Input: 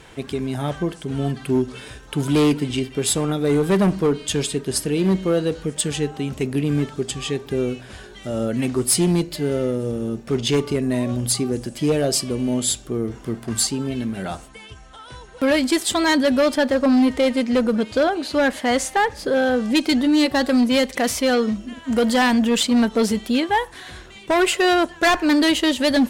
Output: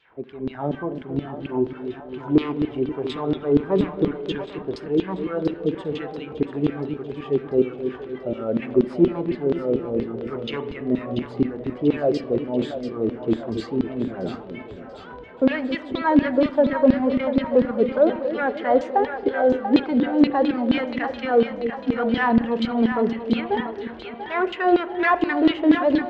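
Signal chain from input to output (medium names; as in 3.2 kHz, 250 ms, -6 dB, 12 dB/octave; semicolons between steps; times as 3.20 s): bass shelf 130 Hz +11.5 dB; level rider; LFO band-pass saw down 4.2 Hz 280–4000 Hz; tape spacing loss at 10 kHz 34 dB; two-band feedback delay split 520 Hz, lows 269 ms, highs 688 ms, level -8 dB; reverberation RT60 0.90 s, pre-delay 35 ms, DRR 15.5 dB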